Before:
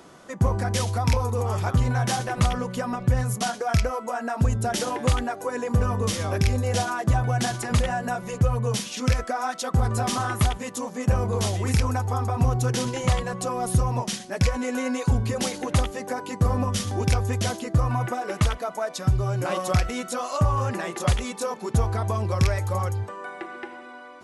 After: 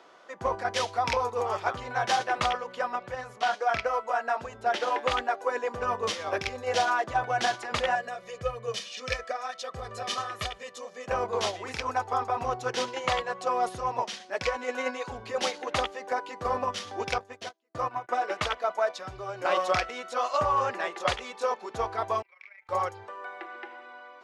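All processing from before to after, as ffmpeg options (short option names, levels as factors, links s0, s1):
-filter_complex "[0:a]asettb=1/sr,asplit=3[s0][s1][s2];[s0]atrim=end=2.514[s3];[s1]atrim=start=2.51:end=5.11,asetpts=PTS-STARTPTS,afade=t=in:d=0.004:c=qsin,afade=t=out:st=2.596:d=0.004:c=qsin,lowshelf=f=240:g=-3.5,acrossover=split=3700[s4][s5];[s5]acompressor=threshold=0.00891:ratio=4:attack=1:release=60[s6];[s4][s6]amix=inputs=2:normalize=0,bandreject=f=50:t=h:w=6,bandreject=f=100:t=h:w=6,bandreject=f=150:t=h:w=6,bandreject=f=200:t=h:w=6,bandreject=f=250:t=h:w=6,bandreject=f=300:t=h:w=6,bandreject=f=350:t=h:w=6,bandreject=f=400:t=h:w=6[s7];[s2]atrim=start=5.106[s8];[s3][s7]acrossfade=d=0.004:c1=hsin:c2=qsin[s9];[s9][s8]acrossfade=d=0.004:c1=qsin:c2=hsin,asettb=1/sr,asplit=3[s10][s11][s12];[s10]atrim=end=7.954[s13];[s11]atrim=start=7.95:end=11.08,asetpts=PTS-STARTPTS,afade=t=in:d=0.004:c=qsin,afade=t=out:st=3.126:d=0.004:c=qsin,equalizer=f=890:t=o:w=1.4:g=-8.5,aecho=1:1:1.7:0.58,atrim=end_sample=138033[s14];[s12]atrim=start=11.076[s15];[s13][s14]acrossfade=d=0.004:c1=hsin:c2=qsin[s16];[s16][s15]acrossfade=d=0.004:c1=qsin:c2=hsin,asettb=1/sr,asplit=3[s17][s18][s19];[s17]atrim=end=17.184[s20];[s18]atrim=start=17.18:end=18.09,asetpts=PTS-STARTPTS,afade=t=in:d=0.004:c=qsin,afade=t=out:st=0.906:d=0.004:c=qsin,agate=range=0.0112:threshold=0.0631:ratio=16:release=100:detection=peak,highpass=130,lowshelf=f=170:g=6[s21];[s19]atrim=start=18.086[s22];[s20][s21]acrossfade=d=0.004:c1=hsin:c2=qsin[s23];[s23][s22]acrossfade=d=0.004:c1=qsin:c2=hsin,asettb=1/sr,asplit=3[s24][s25][s26];[s24]atrim=end=22.224[s27];[s25]atrim=start=22.22:end=22.69,asetpts=PTS-STARTPTS,afade=t=in:d=0.004:c=qsin,afade=t=out:st=0.466:d=0.004:c=qsin,bandpass=f=2200:t=q:w=12,tremolo=f=27:d=0.621[s28];[s26]atrim=start=22.686[s29];[s27][s28]acrossfade=d=0.004:c1=hsin:c2=qsin[s30];[s30][s29]acrossfade=d=0.004:c1=qsin:c2=hsin,acrossover=split=390 5400:gain=0.0708 1 0.0891[s31][s32][s33];[s31][s32][s33]amix=inputs=3:normalize=0,agate=range=0.501:threshold=0.0282:ratio=16:detection=peak,volume=1.41"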